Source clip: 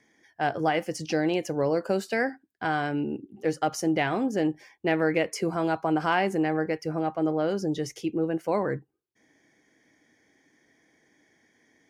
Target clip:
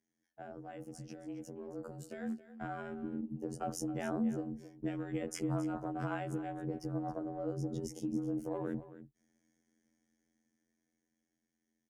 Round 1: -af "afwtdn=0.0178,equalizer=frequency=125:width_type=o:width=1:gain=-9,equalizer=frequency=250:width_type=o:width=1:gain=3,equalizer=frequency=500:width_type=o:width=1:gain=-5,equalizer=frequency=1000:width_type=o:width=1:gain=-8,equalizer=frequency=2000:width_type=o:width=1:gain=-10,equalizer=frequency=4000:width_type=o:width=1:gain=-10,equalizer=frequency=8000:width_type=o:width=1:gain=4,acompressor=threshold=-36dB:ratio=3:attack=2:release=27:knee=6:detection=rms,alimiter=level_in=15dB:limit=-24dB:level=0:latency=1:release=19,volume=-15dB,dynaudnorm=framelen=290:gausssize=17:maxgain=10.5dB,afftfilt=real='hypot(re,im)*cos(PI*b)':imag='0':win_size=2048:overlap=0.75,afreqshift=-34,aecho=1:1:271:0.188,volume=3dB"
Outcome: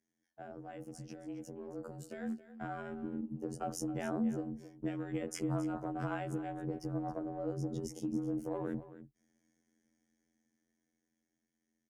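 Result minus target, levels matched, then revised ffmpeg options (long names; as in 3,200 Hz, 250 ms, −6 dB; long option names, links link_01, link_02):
downward compressor: peak gain reduction +6.5 dB
-af "afwtdn=0.0178,equalizer=frequency=125:width_type=o:width=1:gain=-9,equalizer=frequency=250:width_type=o:width=1:gain=3,equalizer=frequency=500:width_type=o:width=1:gain=-5,equalizer=frequency=1000:width_type=o:width=1:gain=-8,equalizer=frequency=2000:width_type=o:width=1:gain=-10,equalizer=frequency=4000:width_type=o:width=1:gain=-10,equalizer=frequency=8000:width_type=o:width=1:gain=4,acompressor=threshold=-26dB:ratio=3:attack=2:release=27:knee=6:detection=rms,alimiter=level_in=15dB:limit=-24dB:level=0:latency=1:release=19,volume=-15dB,dynaudnorm=framelen=290:gausssize=17:maxgain=10.5dB,afftfilt=real='hypot(re,im)*cos(PI*b)':imag='0':win_size=2048:overlap=0.75,afreqshift=-34,aecho=1:1:271:0.188,volume=3dB"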